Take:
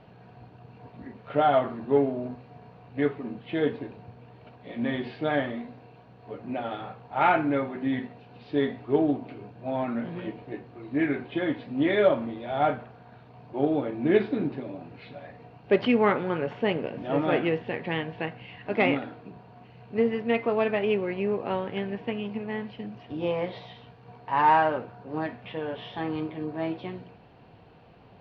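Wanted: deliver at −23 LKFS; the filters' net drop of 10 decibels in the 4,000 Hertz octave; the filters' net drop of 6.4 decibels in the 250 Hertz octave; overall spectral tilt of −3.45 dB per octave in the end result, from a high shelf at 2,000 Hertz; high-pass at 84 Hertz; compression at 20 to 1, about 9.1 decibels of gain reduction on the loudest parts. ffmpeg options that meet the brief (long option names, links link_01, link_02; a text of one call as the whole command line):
ffmpeg -i in.wav -af "highpass=84,equalizer=frequency=250:width_type=o:gain=-8,highshelf=frequency=2000:gain=-8,equalizer=frequency=4000:width_type=o:gain=-6.5,acompressor=threshold=-27dB:ratio=20,volume=12.5dB" out.wav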